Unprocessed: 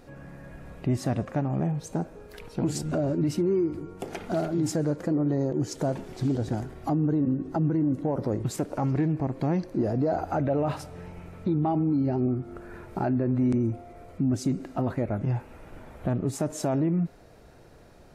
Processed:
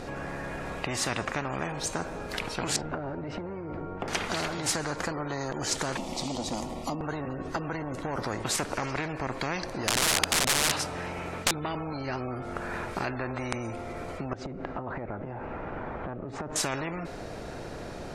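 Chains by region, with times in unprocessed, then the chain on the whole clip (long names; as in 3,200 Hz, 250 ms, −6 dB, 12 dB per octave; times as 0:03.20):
0:02.76–0:04.08: low-pass filter 1,400 Hz + parametric band 1,100 Hz −4.5 dB 0.42 octaves + downward compressor 3 to 1, threshold −30 dBFS
0:05.97–0:07.01: parametric band 240 Hz +14 dB 0.98 octaves + phaser with its sweep stopped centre 420 Hz, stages 6
0:09.87–0:11.51: high-pass filter 63 Hz + mains-hum notches 50/100 Hz + wrap-around overflow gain 22 dB
0:14.33–0:16.56: low-pass filter 1,600 Hz + downward compressor 16 to 1, threshold −36 dBFS
whole clip: low-pass filter 8,800 Hz 12 dB per octave; every bin compressed towards the loudest bin 4 to 1; level +2 dB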